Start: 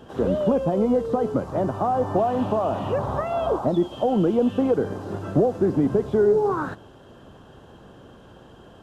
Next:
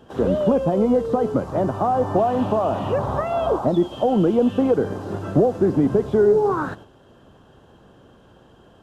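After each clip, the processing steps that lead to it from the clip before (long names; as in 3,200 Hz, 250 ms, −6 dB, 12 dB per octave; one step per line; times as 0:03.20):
noise gate −42 dBFS, range −6 dB
level +2.5 dB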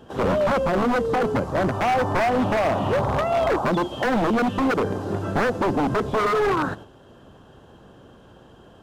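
wave folding −17.5 dBFS
level +2 dB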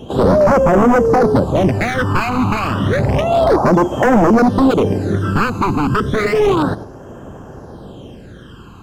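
in parallel at +2 dB: downward compressor, threshold −31 dBFS, peak gain reduction 12 dB
on the sum: all-pass phaser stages 12, 0.31 Hz, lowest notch 570–4,000 Hz
level +7 dB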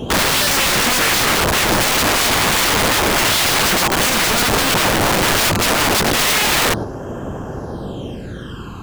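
in parallel at +2 dB: brickwall limiter −11.5 dBFS, peak gain reduction 7 dB
on the sum: wrap-around overflow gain 10.5 dB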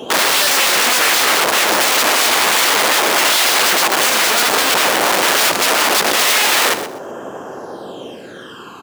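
high-pass filter 400 Hz 12 dB per octave
on a send: repeating echo 124 ms, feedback 20%, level −12 dB
on the sum: level +2 dB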